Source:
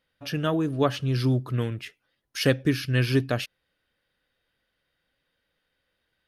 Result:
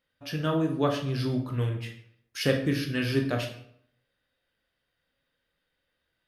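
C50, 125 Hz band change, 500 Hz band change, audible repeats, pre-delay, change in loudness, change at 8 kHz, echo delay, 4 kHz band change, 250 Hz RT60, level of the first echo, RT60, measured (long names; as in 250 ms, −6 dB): 7.5 dB, −4.0 dB, −2.0 dB, no echo audible, 14 ms, −3.0 dB, −3.0 dB, no echo audible, −2.5 dB, 0.70 s, no echo audible, 0.65 s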